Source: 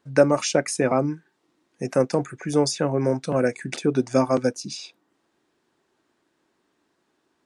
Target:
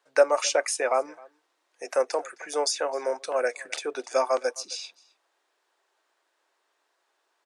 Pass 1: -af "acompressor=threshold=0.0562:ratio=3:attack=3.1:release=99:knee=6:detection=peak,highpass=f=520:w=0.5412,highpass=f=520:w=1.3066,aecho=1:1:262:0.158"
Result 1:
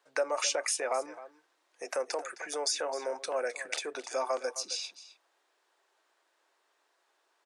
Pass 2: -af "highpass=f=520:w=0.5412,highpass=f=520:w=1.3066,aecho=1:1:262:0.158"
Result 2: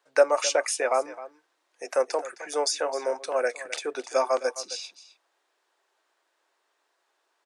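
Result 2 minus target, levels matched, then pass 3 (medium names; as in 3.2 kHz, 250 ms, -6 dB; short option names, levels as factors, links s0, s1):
echo-to-direct +8.5 dB
-af "highpass=f=520:w=0.5412,highpass=f=520:w=1.3066,aecho=1:1:262:0.0596"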